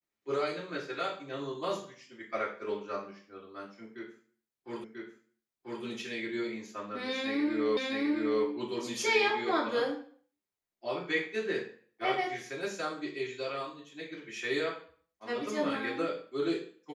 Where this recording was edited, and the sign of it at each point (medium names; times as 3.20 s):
4.84 s: repeat of the last 0.99 s
7.77 s: repeat of the last 0.66 s